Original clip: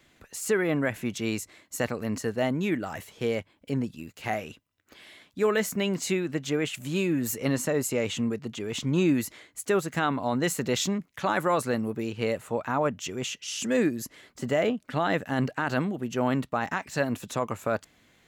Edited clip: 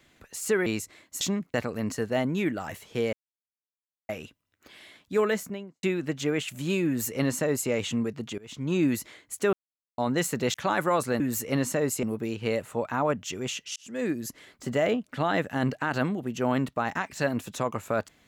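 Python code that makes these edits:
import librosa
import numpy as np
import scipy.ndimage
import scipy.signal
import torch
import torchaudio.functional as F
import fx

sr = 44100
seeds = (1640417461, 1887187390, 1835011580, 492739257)

y = fx.studio_fade_out(x, sr, start_s=5.46, length_s=0.63)
y = fx.edit(y, sr, fx.cut(start_s=0.66, length_s=0.59),
    fx.silence(start_s=3.39, length_s=0.96),
    fx.duplicate(start_s=7.13, length_s=0.83, to_s=11.79),
    fx.fade_in_from(start_s=8.64, length_s=0.51, floor_db=-21.5),
    fx.silence(start_s=9.79, length_s=0.45),
    fx.move(start_s=10.8, length_s=0.33, to_s=1.8),
    fx.fade_in_span(start_s=13.52, length_s=0.52), tone=tone)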